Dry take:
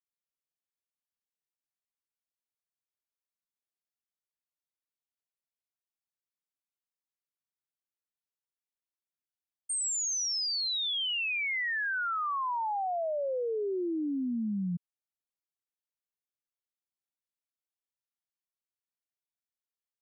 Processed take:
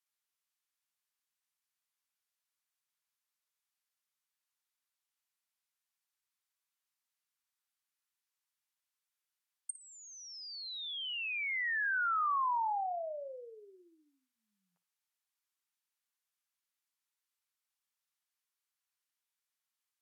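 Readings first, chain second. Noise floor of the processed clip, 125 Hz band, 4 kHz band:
under -85 dBFS, under -40 dB, -10.5 dB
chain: inverse Chebyshev high-pass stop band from 260 Hz, stop band 60 dB; low-pass that closes with the level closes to 1.5 kHz; in parallel at 0 dB: compression, threshold -46 dBFS, peak gain reduction 12.5 dB; on the sum: flutter echo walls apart 9.8 m, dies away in 0.24 s

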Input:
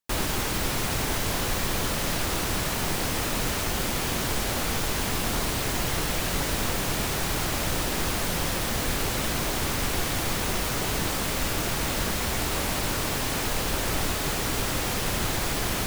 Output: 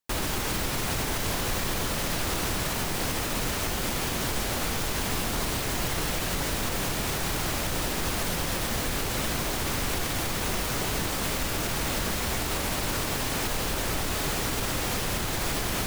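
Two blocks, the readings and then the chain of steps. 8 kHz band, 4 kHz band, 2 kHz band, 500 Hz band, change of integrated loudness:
-1.5 dB, -1.5 dB, -1.5 dB, -1.5 dB, -1.5 dB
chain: peak limiter -18.5 dBFS, peak gain reduction 5 dB

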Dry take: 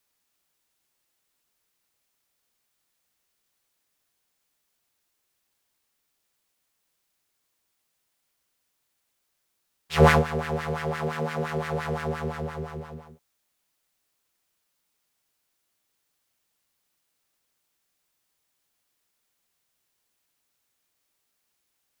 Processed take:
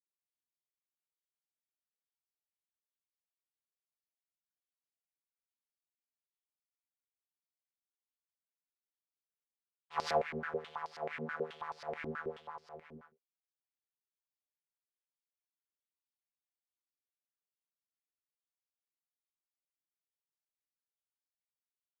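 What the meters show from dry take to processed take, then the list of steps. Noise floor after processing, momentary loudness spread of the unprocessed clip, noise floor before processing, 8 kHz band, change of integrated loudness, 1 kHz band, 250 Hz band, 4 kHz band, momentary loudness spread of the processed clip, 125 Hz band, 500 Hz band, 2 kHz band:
under -85 dBFS, 18 LU, -77 dBFS, -15.0 dB, -14.0 dB, -11.5 dB, -18.0 dB, -12.5 dB, 18 LU, -26.0 dB, -12.5 dB, -13.5 dB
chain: gate with hold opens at -35 dBFS; step-sequenced band-pass 9.3 Hz 290–4900 Hz; trim -1 dB

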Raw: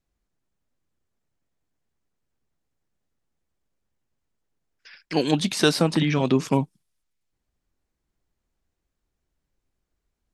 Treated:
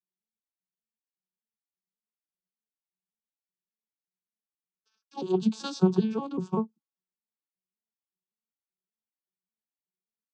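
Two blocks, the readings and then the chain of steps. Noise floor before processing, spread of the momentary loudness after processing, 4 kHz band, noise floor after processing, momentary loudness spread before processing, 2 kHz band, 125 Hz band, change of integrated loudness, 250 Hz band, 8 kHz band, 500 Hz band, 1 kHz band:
-81 dBFS, 14 LU, -15.5 dB, under -85 dBFS, 6 LU, -21.5 dB, -7.0 dB, -6.0 dB, -4.0 dB, -15.0 dB, -5.5 dB, -7.5 dB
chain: vocoder on a broken chord minor triad, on F#3, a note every 193 ms; static phaser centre 400 Hz, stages 8; three bands expanded up and down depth 40%

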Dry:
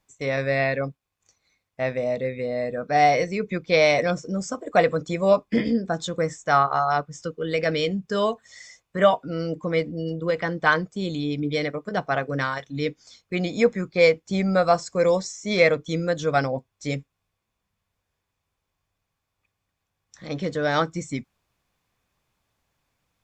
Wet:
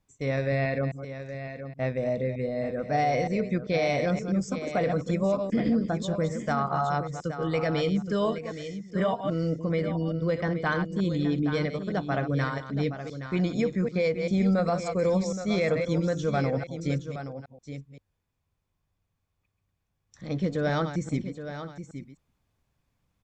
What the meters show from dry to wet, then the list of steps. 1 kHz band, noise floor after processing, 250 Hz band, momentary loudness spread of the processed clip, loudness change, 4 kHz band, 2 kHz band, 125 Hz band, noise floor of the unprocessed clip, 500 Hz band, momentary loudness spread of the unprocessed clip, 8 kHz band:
-7.0 dB, -78 dBFS, +0.5 dB, 12 LU, -4.5 dB, -8.0 dB, -8.0 dB, +2.0 dB, -81 dBFS, -5.0 dB, 10 LU, -6.5 dB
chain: chunks repeated in reverse 131 ms, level -10.5 dB; bass shelf 340 Hz +11 dB; peak limiter -10.5 dBFS, peak gain reduction 8.5 dB; on a send: delay 821 ms -10.5 dB; on the sum: trim -7 dB

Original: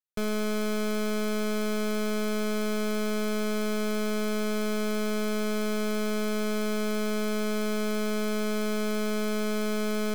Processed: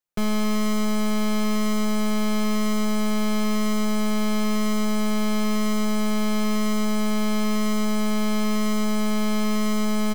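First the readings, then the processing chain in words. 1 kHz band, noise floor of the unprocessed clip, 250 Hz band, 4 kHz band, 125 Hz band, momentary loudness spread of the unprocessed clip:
+6.5 dB, -28 dBFS, +7.0 dB, +5.0 dB, no reading, 0 LU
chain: comb 5.7 ms, depth 75%; in parallel at -10 dB: sample-and-hold 9×; on the sum: trim +2 dB

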